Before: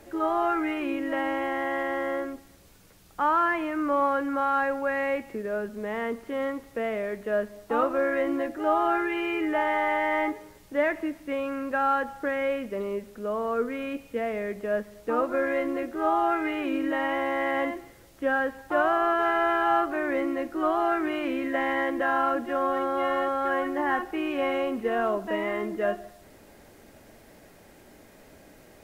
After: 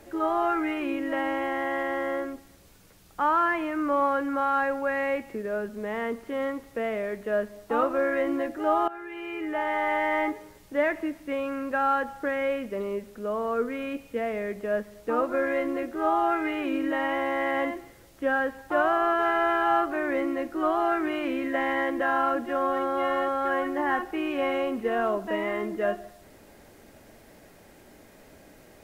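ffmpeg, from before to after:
-filter_complex "[0:a]asplit=2[a][b];[a]atrim=end=8.88,asetpts=PTS-STARTPTS,afade=t=out:st=8.876:d=0.004:c=hsin:silence=0.125893[c];[b]atrim=start=8.88,asetpts=PTS-STARTPTS,afade=t=in:d=1.09:silence=0.125893[d];[c][d]concat=n=2:v=0:a=1"

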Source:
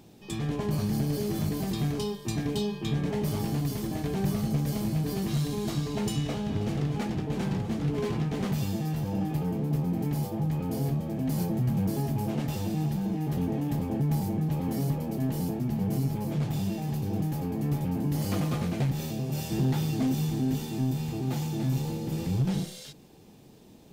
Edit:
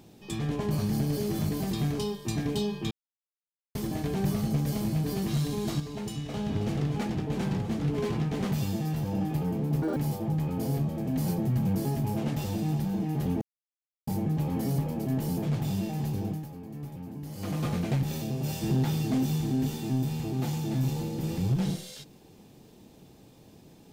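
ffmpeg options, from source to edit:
-filter_complex "[0:a]asplit=12[a][b][c][d][e][f][g][h][i][j][k][l];[a]atrim=end=2.91,asetpts=PTS-STARTPTS,afade=t=out:st=2.906:d=0.004:c=hsin[m];[b]atrim=start=2.91:end=3.75,asetpts=PTS-STARTPTS,volume=0[n];[c]atrim=start=3.75:end=5.802,asetpts=PTS-STARTPTS,afade=t=in:d=0.004:c=hsin[o];[d]atrim=start=5.798:end=6.342,asetpts=PTS-STARTPTS,volume=-6dB[p];[e]atrim=start=6.338:end=9.824[q];[f]atrim=start=9.82:end=10.08,asetpts=PTS-STARTPTS,asetrate=79821,aresample=44100[r];[g]atrim=start=10.076:end=13.53,asetpts=PTS-STARTPTS,afade=t=out:st=3.45:d=0.004:c=hsin[s];[h]atrim=start=13.53:end=14.19,asetpts=PTS-STARTPTS,volume=0[t];[i]atrim=start=14.19:end=15.542,asetpts=PTS-STARTPTS,afade=t=in:d=0.004:c=hsin[u];[j]atrim=start=16.308:end=17.37,asetpts=PTS-STARTPTS,afade=t=out:st=0.742:d=0.32:silence=0.281838[v];[k]atrim=start=17.37:end=18.24,asetpts=PTS-STARTPTS,volume=-11dB[w];[l]atrim=start=18.24,asetpts=PTS-STARTPTS,afade=t=in:d=0.32:silence=0.281838[x];[m][n][o]concat=n=3:v=0:a=1[y];[y][p]acrossfade=d=0.004:c1=hsin:c2=hsin[z];[z][q]acrossfade=d=0.004:c1=hsin:c2=hsin[aa];[aa][r]acrossfade=d=0.004:c1=hsin:c2=hsin[ab];[s][t][u]concat=n=3:v=0:a=1[ac];[ab][ac]acrossfade=d=0.004:c1=hsin:c2=hsin[ad];[v][w][x]concat=n=3:v=0:a=1[ae];[ad][ae]acrossfade=d=0.004:c1=hsin:c2=hsin"

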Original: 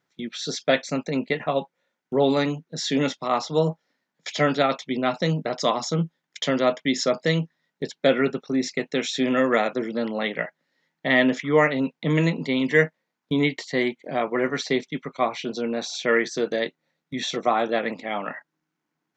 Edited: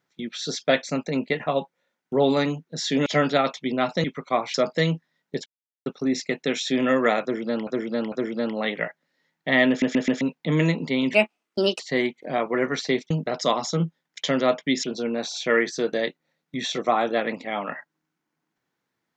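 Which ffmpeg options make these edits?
-filter_complex "[0:a]asplit=16[a][b][c][d][e][f][g][h][i][j][k][l][m][n][o][p];[a]atrim=end=3.062[q];[b]atrim=start=4.308:end=5.292[r];[c]atrim=start=14.918:end=15.422[s];[d]atrim=start=7.018:end=7.94,asetpts=PTS-STARTPTS,afade=t=out:st=0.918:d=0.004:c=hsin[t];[e]atrim=start=7.94:end=8.34,asetpts=PTS-STARTPTS,volume=0[u];[f]atrim=start=8.34:end=10.152,asetpts=PTS-STARTPTS,afade=t=in:d=0.004:c=hsin[v];[g]atrim=start=9.698:end=10.152[w];[h]atrim=start=9.698:end=11.402[x];[i]atrim=start=11.268:end=11.402[y];[j]atrim=start=11.268:end=11.402[z];[k]atrim=start=11.268:end=11.402[aa];[l]atrim=start=11.788:end=12.724[ab];[m]atrim=start=12.72:end=13.61,asetpts=PTS-STARTPTS,asetrate=59976,aresample=44100[ac];[n]atrim=start=13.606:end=14.922[ad];[o]atrim=start=5.288:end=7.022[ae];[p]atrim=start=15.418[af];[q][r]acrossfade=d=0.004:c1=hsin:c2=hsin[ag];[ag][s]acrossfade=d=0.004:c1=hsin:c2=hsin[ah];[t][u][v]concat=n=3:v=0:a=1[ai];[ah][ai]acrossfade=d=0.004:c1=hsin:c2=hsin[aj];[aj][w]acrossfade=d=0.004:c1=hsin:c2=hsin[ak];[ak][x]acrossfade=d=0.004:c1=hsin:c2=hsin[al];[al][y]acrossfade=d=0.004:c1=hsin:c2=hsin[am];[am][z]acrossfade=d=0.004:c1=hsin:c2=hsin[an];[an][aa]acrossfade=d=0.004:c1=hsin:c2=hsin[ao];[ao][ab]acrossfade=d=0.004:c1=hsin:c2=hsin[ap];[ap][ac]acrossfade=d=0.004:c1=hsin:c2=hsin[aq];[aq][ad]acrossfade=d=0.004:c1=hsin:c2=hsin[ar];[ar][ae]acrossfade=d=0.004:c1=hsin:c2=hsin[as];[as][af]acrossfade=d=0.004:c1=hsin:c2=hsin"

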